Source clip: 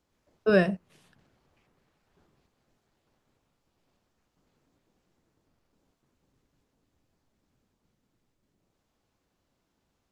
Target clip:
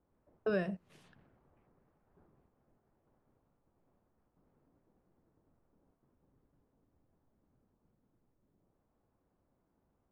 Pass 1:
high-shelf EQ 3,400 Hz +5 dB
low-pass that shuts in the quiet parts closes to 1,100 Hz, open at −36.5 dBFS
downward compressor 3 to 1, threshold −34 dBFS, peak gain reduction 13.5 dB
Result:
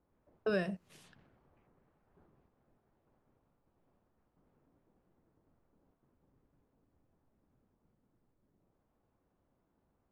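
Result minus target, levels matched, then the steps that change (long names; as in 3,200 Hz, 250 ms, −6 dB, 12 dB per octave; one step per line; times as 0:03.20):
4,000 Hz band +5.0 dB
change: high-shelf EQ 3,400 Hz −5 dB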